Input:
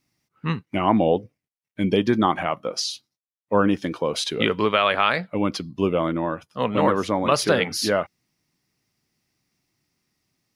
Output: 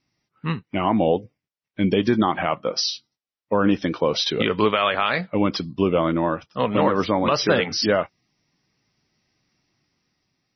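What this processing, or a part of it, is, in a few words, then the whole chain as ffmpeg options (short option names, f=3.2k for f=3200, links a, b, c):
low-bitrate web radio: -af "dynaudnorm=f=640:g=5:m=11dB,alimiter=limit=-7dB:level=0:latency=1:release=120" -ar 24000 -c:a libmp3lame -b:a 24k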